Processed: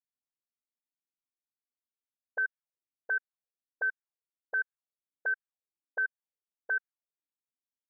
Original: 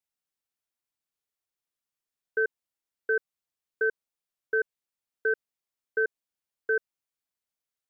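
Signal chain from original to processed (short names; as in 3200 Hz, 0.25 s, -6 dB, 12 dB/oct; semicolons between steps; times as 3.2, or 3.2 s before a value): auto-wah 250–1600 Hz, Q 6.8, up, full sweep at -29 dBFS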